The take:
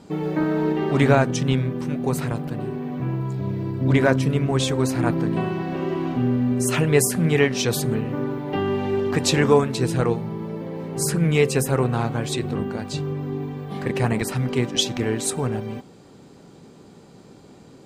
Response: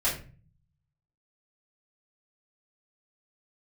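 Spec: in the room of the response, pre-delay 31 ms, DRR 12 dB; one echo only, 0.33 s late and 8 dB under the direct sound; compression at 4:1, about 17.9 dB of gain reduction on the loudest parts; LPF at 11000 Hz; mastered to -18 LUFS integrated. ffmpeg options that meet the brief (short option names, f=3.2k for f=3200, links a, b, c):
-filter_complex "[0:a]lowpass=11k,acompressor=threshold=-34dB:ratio=4,aecho=1:1:330:0.398,asplit=2[a][b];[1:a]atrim=start_sample=2205,adelay=31[c];[b][c]afir=irnorm=-1:irlink=0,volume=-21.5dB[d];[a][d]amix=inputs=2:normalize=0,volume=16.5dB"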